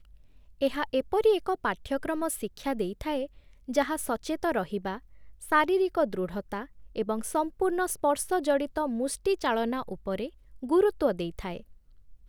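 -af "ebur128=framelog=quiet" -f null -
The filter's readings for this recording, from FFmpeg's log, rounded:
Integrated loudness:
  I:         -29.0 LUFS
  Threshold: -39.6 LUFS
Loudness range:
  LRA:         2.7 LU
  Threshold: -49.5 LUFS
  LRA low:   -31.2 LUFS
  LRA high:  -28.5 LUFS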